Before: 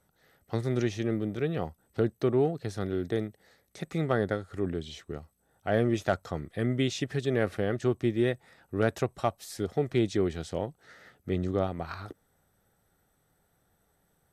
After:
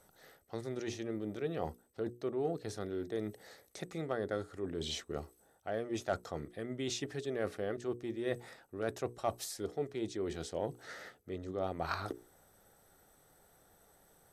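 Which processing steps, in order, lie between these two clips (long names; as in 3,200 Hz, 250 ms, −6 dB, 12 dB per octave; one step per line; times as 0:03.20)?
spectral tilt −2.5 dB per octave
reversed playback
downward compressor 10 to 1, threshold −34 dBFS, peak gain reduction 18.5 dB
reversed playback
bass and treble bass −15 dB, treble +10 dB
mains-hum notches 60/120/180/240/300/360/420/480 Hz
level +6.5 dB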